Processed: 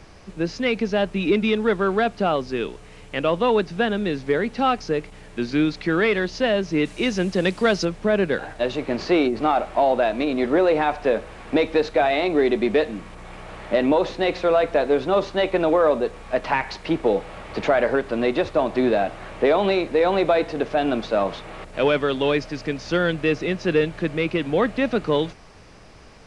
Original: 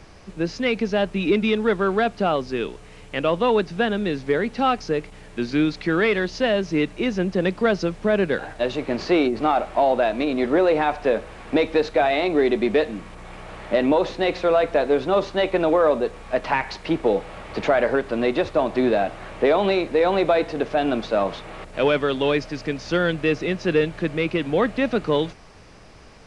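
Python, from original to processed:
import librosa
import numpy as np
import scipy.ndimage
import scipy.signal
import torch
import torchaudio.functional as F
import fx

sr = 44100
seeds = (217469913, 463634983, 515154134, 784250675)

y = fx.high_shelf(x, sr, hz=3200.0, db=11.0, at=(6.85, 7.85))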